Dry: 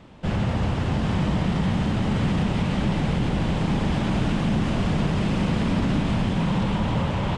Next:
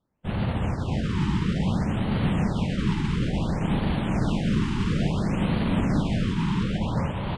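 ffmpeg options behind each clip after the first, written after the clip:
-af "agate=range=-33dB:threshold=-17dB:ratio=3:detection=peak,afftfilt=real='re*(1-between(b*sr/1024,560*pow(6700/560,0.5+0.5*sin(2*PI*0.58*pts/sr))/1.41,560*pow(6700/560,0.5+0.5*sin(2*PI*0.58*pts/sr))*1.41))':imag='im*(1-between(b*sr/1024,560*pow(6700/560,0.5+0.5*sin(2*PI*0.58*pts/sr))/1.41,560*pow(6700/560,0.5+0.5*sin(2*PI*0.58*pts/sr))*1.41))':win_size=1024:overlap=0.75,volume=3dB"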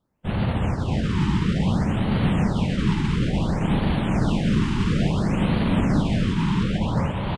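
-af "aecho=1:1:480:0.0708,volume=3dB"

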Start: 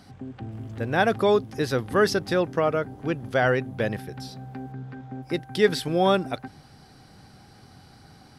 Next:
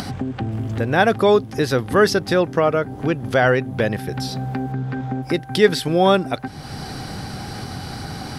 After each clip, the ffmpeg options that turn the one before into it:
-af "acompressor=mode=upward:threshold=-22dB:ratio=2.5,volume=5.5dB"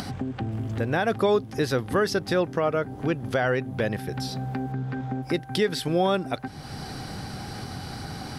-af "alimiter=limit=-8.5dB:level=0:latency=1:release=155,volume=-5dB"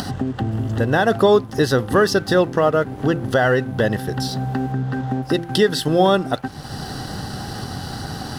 -af "asuperstop=centerf=2300:order=20:qfactor=4.1,bandreject=f=170.7:t=h:w=4,bandreject=f=341.4:t=h:w=4,bandreject=f=512.1:t=h:w=4,bandreject=f=682.8:t=h:w=4,bandreject=f=853.5:t=h:w=4,bandreject=f=1.0242k:t=h:w=4,bandreject=f=1.1949k:t=h:w=4,bandreject=f=1.3656k:t=h:w=4,bandreject=f=1.5363k:t=h:w=4,aeval=exprs='sgn(val(0))*max(abs(val(0))-0.00335,0)':c=same,volume=8dB"

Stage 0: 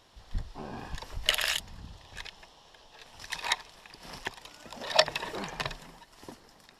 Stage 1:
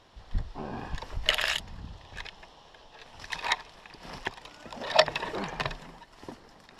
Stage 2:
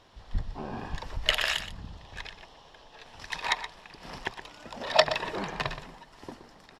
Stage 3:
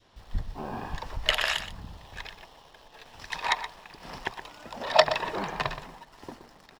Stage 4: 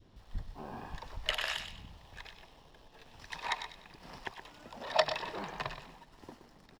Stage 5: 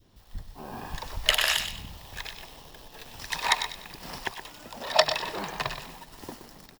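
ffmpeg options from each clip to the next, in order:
-af "aemphasis=mode=reproduction:type=50kf,areverse,acompressor=mode=upward:threshold=-53dB:ratio=2.5,areverse,volume=3.5dB"
-filter_complex "[0:a]asplit=2[a][b];[b]adelay=122.4,volume=-11dB,highshelf=f=4k:g=-2.76[c];[a][c]amix=inputs=2:normalize=0"
-filter_complex "[0:a]adynamicequalizer=threshold=0.00631:dfrequency=920:dqfactor=1:tfrequency=920:tqfactor=1:attack=5:release=100:ratio=0.375:range=2:mode=boostabove:tftype=bell,asplit=2[a][b];[b]acrusher=bits=7:mix=0:aa=0.000001,volume=-10.5dB[c];[a][c]amix=inputs=2:normalize=0,volume=-2.5dB"
-filter_complex "[0:a]acrossover=split=380|800|2200[a][b][c][d];[a]acompressor=mode=upward:threshold=-41dB:ratio=2.5[e];[d]asplit=2[f][g];[g]adelay=98,lowpass=f=4.5k:p=1,volume=-4.5dB,asplit=2[h][i];[i]adelay=98,lowpass=f=4.5k:p=1,volume=0.47,asplit=2[j][k];[k]adelay=98,lowpass=f=4.5k:p=1,volume=0.47,asplit=2[l][m];[m]adelay=98,lowpass=f=4.5k:p=1,volume=0.47,asplit=2[n][o];[o]adelay=98,lowpass=f=4.5k:p=1,volume=0.47,asplit=2[p][q];[q]adelay=98,lowpass=f=4.5k:p=1,volume=0.47[r];[f][h][j][l][n][p][r]amix=inputs=7:normalize=0[s];[e][b][c][s]amix=inputs=4:normalize=0,volume=-8.5dB"
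-af "aemphasis=mode=production:type=50fm,dynaudnorm=f=510:g=3:m=10dB"

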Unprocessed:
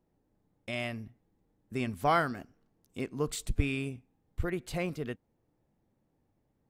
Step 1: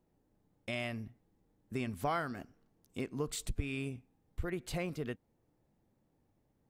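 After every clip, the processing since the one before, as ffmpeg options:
-af "acompressor=threshold=-34dB:ratio=2.5"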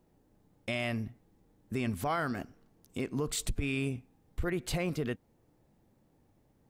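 -af "alimiter=level_in=5.5dB:limit=-24dB:level=0:latency=1:release=31,volume=-5.5dB,volume=7dB"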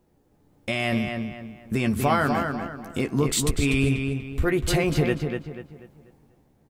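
-filter_complex "[0:a]dynaudnorm=f=150:g=9:m=6dB,asplit=2[a][b];[b]adelay=14,volume=-8dB[c];[a][c]amix=inputs=2:normalize=0,asplit=2[d][e];[e]adelay=244,lowpass=f=3.8k:p=1,volume=-5dB,asplit=2[f][g];[g]adelay=244,lowpass=f=3.8k:p=1,volume=0.37,asplit=2[h][i];[i]adelay=244,lowpass=f=3.8k:p=1,volume=0.37,asplit=2[j][k];[k]adelay=244,lowpass=f=3.8k:p=1,volume=0.37,asplit=2[l][m];[m]adelay=244,lowpass=f=3.8k:p=1,volume=0.37[n];[f][h][j][l][n]amix=inputs=5:normalize=0[o];[d][o]amix=inputs=2:normalize=0,volume=3dB"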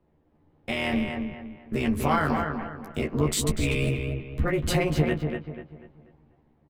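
-filter_complex "[0:a]acrossover=split=230|730|3600[a][b][c][d];[d]aeval=exprs='sgn(val(0))*max(abs(val(0))-0.00398,0)':c=same[e];[a][b][c][e]amix=inputs=4:normalize=0,tremolo=f=200:d=0.788,asplit=2[f][g];[g]adelay=13,volume=-3.5dB[h];[f][h]amix=inputs=2:normalize=0"

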